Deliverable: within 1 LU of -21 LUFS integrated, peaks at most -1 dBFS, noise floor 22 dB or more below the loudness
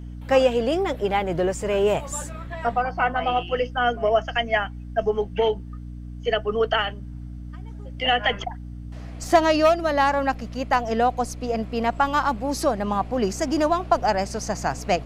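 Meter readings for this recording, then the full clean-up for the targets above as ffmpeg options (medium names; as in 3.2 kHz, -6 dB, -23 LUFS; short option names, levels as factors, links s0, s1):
hum 60 Hz; highest harmonic 300 Hz; hum level -33 dBFS; loudness -23.0 LUFS; peak level -5.5 dBFS; loudness target -21.0 LUFS
-> -af "bandreject=f=60:t=h:w=6,bandreject=f=120:t=h:w=6,bandreject=f=180:t=h:w=6,bandreject=f=240:t=h:w=6,bandreject=f=300:t=h:w=6"
-af "volume=1.26"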